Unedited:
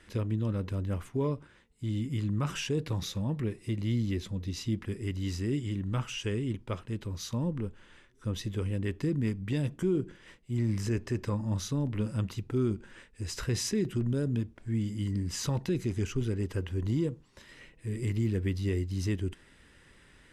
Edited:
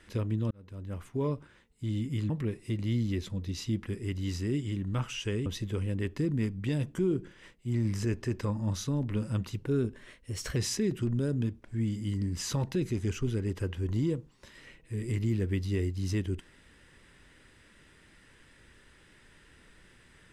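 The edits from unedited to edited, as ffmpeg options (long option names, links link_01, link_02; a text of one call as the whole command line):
ffmpeg -i in.wav -filter_complex "[0:a]asplit=6[link_01][link_02][link_03][link_04][link_05][link_06];[link_01]atrim=end=0.51,asetpts=PTS-STARTPTS,afade=type=out:start_time=0.506:duration=0.004:curve=hsin[link_07];[link_02]atrim=start=0.51:end=2.302,asetpts=PTS-STARTPTS,afade=type=in:duration=0.79[link_08];[link_03]atrim=start=3.288:end=6.452[link_09];[link_04]atrim=start=8.298:end=12.434[link_10];[link_05]atrim=start=12.43:end=13.5,asetpts=PTS-STARTPTS,asetrate=48510,aresample=44100,atrim=end_sample=42897,asetpts=PTS-STARTPTS[link_11];[link_06]atrim=start=13.496[link_12];[link_07][link_08]concat=n=2:v=0:a=1[link_13];[link_13][link_09]acrossfade=duration=0.004:curve1=hsin:curve2=hsin[link_14];[link_14][link_10]acrossfade=duration=0.004:curve1=hsin:curve2=hsin[link_15];[link_15][link_11]acrossfade=duration=0.004:curve1=hsin:curve2=hsin[link_16];[link_16][link_12]acrossfade=duration=0.004:curve1=hsin:curve2=hsin" out.wav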